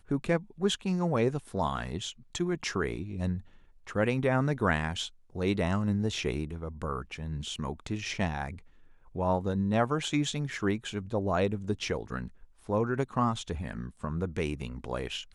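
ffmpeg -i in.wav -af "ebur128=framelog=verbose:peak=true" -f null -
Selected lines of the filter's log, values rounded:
Integrated loudness:
  I:         -31.5 LUFS
  Threshold: -41.7 LUFS
Loudness range:
  LRA:         3.2 LU
  Threshold: -51.7 LUFS
  LRA low:   -33.5 LUFS
  LRA high:  -30.2 LUFS
True peak:
  Peak:      -13.8 dBFS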